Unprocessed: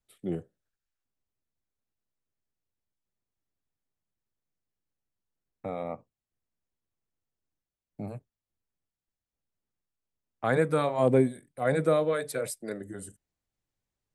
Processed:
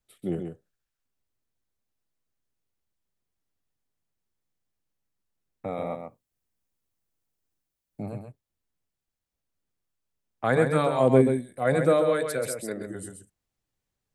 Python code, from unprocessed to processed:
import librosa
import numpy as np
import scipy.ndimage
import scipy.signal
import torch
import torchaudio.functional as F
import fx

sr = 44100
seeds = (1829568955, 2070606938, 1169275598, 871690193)

y = fx.high_shelf(x, sr, hz=7400.0, db=7.5, at=(5.7, 8.03))
y = y + 10.0 ** (-6.5 / 20.0) * np.pad(y, (int(133 * sr / 1000.0), 0))[:len(y)]
y = y * librosa.db_to_amplitude(2.5)